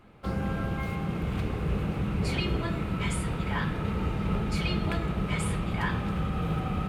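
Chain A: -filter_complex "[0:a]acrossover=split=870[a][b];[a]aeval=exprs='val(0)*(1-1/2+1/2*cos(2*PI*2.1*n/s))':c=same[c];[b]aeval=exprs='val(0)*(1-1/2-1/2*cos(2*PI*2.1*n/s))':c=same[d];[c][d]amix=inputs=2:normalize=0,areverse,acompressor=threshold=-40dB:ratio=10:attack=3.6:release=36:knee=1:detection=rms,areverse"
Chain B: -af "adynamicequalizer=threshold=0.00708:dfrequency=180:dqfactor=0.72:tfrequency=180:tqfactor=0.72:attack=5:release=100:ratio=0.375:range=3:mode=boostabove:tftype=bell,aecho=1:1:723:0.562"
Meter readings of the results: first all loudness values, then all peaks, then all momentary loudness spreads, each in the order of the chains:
-43.5, -25.0 LUFS; -32.0, -11.0 dBFS; 2, 3 LU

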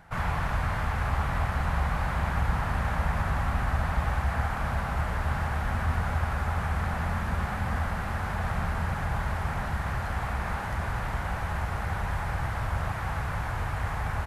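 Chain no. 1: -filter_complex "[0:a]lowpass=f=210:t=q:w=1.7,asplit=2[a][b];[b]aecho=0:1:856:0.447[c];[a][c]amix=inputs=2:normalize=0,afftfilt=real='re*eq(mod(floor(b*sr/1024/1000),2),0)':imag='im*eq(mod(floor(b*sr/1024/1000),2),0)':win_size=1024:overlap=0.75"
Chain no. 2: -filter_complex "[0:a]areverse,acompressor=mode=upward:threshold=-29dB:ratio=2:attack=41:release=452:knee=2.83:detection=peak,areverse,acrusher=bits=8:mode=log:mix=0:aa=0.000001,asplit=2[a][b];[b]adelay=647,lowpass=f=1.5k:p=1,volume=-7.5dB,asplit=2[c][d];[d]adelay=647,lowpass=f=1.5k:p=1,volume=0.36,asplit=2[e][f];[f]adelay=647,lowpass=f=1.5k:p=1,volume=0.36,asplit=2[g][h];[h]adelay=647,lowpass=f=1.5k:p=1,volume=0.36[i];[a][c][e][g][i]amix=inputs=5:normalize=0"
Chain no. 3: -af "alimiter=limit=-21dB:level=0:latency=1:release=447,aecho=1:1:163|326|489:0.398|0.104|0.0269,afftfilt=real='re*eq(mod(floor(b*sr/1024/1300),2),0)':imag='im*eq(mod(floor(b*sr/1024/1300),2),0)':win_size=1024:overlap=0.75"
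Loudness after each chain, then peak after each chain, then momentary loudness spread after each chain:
-30.0, -29.5, -33.0 LUFS; -13.0, -11.5, -19.5 dBFS; 5, 4, 2 LU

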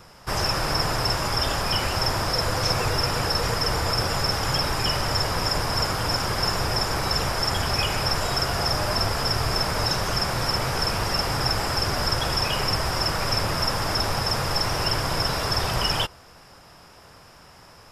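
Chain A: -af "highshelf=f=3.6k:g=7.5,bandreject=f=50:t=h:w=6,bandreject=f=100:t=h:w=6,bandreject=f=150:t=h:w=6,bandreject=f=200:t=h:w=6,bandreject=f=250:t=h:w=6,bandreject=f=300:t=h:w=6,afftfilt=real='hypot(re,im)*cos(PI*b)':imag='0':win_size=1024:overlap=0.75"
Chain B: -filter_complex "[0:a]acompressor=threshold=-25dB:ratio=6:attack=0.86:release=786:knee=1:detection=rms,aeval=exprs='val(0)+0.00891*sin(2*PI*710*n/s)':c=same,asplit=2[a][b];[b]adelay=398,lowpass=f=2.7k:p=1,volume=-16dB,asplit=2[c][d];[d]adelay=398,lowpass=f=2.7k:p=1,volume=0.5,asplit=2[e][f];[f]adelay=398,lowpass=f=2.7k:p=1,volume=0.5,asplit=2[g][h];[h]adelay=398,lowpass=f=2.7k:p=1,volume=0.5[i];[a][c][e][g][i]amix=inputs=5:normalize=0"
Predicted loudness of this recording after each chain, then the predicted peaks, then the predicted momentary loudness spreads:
-23.0, -32.0 LUFS; -3.5, -19.0 dBFS; 2, 3 LU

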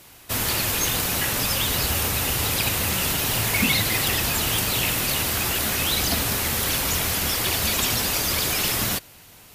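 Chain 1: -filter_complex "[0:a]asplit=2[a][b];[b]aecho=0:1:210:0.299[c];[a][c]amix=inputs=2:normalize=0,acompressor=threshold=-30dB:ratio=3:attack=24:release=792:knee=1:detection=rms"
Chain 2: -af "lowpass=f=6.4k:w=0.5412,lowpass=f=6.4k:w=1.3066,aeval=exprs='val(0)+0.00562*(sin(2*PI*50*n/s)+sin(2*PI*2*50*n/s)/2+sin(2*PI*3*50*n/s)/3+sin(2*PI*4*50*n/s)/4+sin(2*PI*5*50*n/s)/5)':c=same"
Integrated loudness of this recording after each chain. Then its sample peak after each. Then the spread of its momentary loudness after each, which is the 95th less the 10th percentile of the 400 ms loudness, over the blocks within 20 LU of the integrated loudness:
-29.5, -24.0 LUFS; -16.0, -9.5 dBFS; 1, 3 LU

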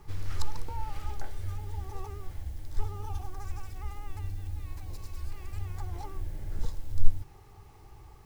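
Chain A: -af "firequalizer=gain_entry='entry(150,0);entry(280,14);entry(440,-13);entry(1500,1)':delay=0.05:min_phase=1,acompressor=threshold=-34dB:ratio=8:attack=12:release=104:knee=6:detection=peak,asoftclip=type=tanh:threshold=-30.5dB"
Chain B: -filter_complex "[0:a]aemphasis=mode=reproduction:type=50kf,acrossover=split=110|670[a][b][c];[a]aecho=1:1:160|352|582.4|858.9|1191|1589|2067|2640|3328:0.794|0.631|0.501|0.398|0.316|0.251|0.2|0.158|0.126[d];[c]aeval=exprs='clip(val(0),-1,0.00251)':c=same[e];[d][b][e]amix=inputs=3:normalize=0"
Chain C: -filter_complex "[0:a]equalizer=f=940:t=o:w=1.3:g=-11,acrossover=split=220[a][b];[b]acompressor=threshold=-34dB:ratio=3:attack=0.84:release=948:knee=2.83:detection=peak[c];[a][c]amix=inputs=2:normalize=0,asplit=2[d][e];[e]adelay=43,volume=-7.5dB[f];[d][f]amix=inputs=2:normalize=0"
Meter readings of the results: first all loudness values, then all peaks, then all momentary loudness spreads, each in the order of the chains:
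-46.5, -38.0, -39.0 LUFS; -31.5, -4.5, -7.0 dBFS; 9, 3, 6 LU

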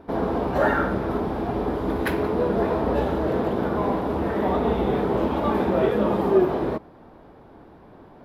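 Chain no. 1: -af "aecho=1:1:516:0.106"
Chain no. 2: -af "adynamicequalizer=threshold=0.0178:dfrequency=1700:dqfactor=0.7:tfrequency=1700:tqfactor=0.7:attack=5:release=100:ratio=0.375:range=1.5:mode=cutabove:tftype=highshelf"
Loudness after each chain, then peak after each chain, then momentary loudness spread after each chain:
-23.5, -23.5 LUFS; -7.0, -7.0 dBFS; 6, 6 LU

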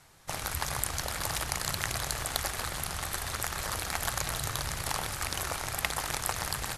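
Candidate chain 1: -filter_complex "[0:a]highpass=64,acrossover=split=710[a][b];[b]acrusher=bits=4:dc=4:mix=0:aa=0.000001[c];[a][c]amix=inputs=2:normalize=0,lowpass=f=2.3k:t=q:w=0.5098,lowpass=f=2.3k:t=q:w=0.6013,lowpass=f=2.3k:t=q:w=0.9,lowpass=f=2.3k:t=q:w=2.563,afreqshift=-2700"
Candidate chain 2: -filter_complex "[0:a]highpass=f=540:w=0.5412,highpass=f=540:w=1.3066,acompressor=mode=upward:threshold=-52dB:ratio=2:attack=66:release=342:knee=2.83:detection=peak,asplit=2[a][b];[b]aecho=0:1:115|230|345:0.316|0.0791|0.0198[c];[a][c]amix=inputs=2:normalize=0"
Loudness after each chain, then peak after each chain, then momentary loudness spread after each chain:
-35.5, -32.5 LUFS; -13.0, -7.0 dBFS; 2, 3 LU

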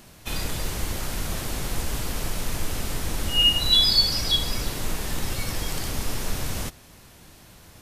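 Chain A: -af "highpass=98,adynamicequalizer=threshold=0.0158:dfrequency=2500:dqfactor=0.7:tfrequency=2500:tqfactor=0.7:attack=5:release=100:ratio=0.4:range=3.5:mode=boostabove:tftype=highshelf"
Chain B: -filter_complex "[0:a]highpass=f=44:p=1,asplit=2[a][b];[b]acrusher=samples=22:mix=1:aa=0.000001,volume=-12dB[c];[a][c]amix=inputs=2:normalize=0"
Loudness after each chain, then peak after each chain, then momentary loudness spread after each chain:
-17.0, -24.0 LUFS; -2.0, -7.0 dBFS; 19, 13 LU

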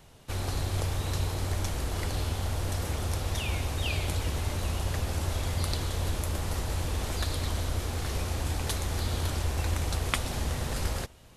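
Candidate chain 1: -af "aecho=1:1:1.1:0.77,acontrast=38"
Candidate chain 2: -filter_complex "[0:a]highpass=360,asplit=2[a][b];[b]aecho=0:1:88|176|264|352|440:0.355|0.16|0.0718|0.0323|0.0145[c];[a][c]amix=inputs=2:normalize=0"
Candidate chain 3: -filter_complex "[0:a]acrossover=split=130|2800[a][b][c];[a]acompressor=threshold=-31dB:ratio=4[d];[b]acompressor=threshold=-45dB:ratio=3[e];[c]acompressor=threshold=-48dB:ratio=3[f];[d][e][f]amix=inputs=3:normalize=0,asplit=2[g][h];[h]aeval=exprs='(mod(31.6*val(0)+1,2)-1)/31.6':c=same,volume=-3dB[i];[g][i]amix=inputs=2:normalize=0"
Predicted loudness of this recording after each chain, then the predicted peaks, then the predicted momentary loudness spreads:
-22.5, -35.5, -33.0 LUFS; -3.0, -5.5, -16.5 dBFS; 2, 4, 1 LU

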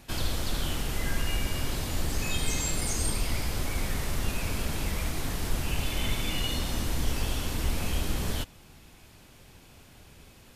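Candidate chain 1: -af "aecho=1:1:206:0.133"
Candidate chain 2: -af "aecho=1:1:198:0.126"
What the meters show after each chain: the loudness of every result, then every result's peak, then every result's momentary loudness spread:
-31.5, -31.5 LUFS; -14.5, -14.5 dBFS; 4, 4 LU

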